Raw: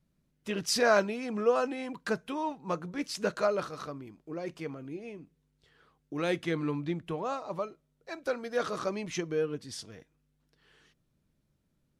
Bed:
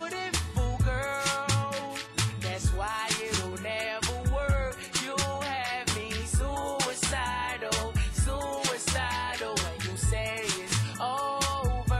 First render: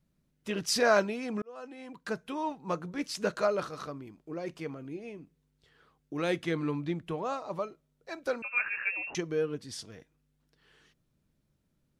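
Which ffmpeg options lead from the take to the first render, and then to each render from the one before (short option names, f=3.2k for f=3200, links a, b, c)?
-filter_complex "[0:a]asettb=1/sr,asplit=3[a][b][c];[a]atrim=end=8.424[d];[b]atrim=start=8.42:end=9.15,asetpts=PTS-STARTPTS,afade=t=in:d=0.004:c=qsin,afade=t=out:st=0.726:d=0.004:c=qsin,lowpass=f=2.5k:t=q:w=0.5098,lowpass=f=2.5k:t=q:w=0.6013,lowpass=f=2.5k:t=q:w=0.9,lowpass=f=2.5k:t=q:w=2.563,afreqshift=-2900[e];[c]atrim=start=9.146[f];[d][e]acrossfade=d=0.004:c1=hsin:c2=qsin[g];[g][f]acrossfade=d=0.004:c1=qsin:c2=hsin,asplit=2[h][i];[h]atrim=end=1.42,asetpts=PTS-STARTPTS,afade=t=out:st=1.416:d=0.004:c=hsin[j];[i]atrim=start=1.42,asetpts=PTS-STARTPTS,afade=t=in:d=1.05[k];[j][k]concat=n=2:v=0:a=1"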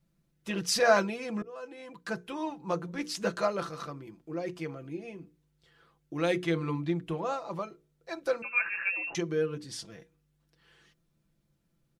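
-af "bandreject=f=60:t=h:w=6,bandreject=f=120:t=h:w=6,bandreject=f=180:t=h:w=6,bandreject=f=240:t=h:w=6,bandreject=f=300:t=h:w=6,bandreject=f=360:t=h:w=6,bandreject=f=420:t=h:w=6,bandreject=f=480:t=h:w=6,aecho=1:1:5.9:0.55"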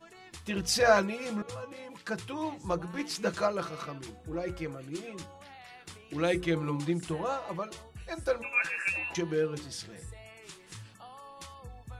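-filter_complex "[1:a]volume=-18.5dB[a];[0:a][a]amix=inputs=2:normalize=0"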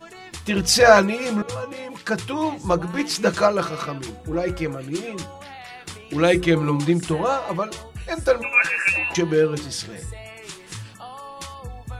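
-af "volume=11dB,alimiter=limit=-1dB:level=0:latency=1"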